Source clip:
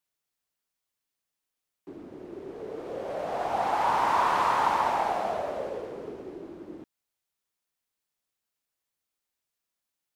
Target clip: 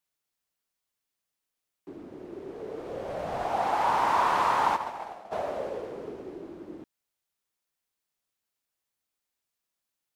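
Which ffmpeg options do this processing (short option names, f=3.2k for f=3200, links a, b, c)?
-filter_complex "[0:a]asettb=1/sr,asplit=3[a][b][c];[a]atrim=end=2.684[d];[b]atrim=start=2.68:end=3.45,asetpts=PTS-STARTPTS,afade=t=in:d=0.004:c=qsin,afade=t=out:st=0.766:d=0.004:c=qsin,asubboost=boost=11.5:cutoff=190[e];[c]atrim=start=3.446[f];[d][e]acrossfade=d=0.004:c1=hsin:c2=qsin[g];[g][f]acrossfade=d=0.004:c1=qsin:c2=hsin,asplit=3[h][i][j];[h]afade=t=out:st=4.75:d=0.02[k];[i]agate=range=-33dB:threshold=-17dB:ratio=3:detection=peak,afade=t=in:st=4.75:d=0.02,afade=t=out:st=5.31:d=0.02[l];[j]afade=t=in:st=5.31:d=0.02[m];[k][l][m]amix=inputs=3:normalize=0"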